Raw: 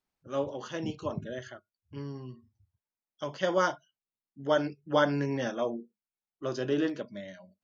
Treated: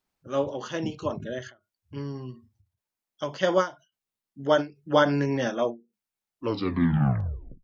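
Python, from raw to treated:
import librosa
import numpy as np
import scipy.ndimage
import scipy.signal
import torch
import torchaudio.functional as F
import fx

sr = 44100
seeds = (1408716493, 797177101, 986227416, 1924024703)

y = fx.tape_stop_end(x, sr, length_s=1.34)
y = fx.end_taper(y, sr, db_per_s=220.0)
y = y * 10.0 ** (5.0 / 20.0)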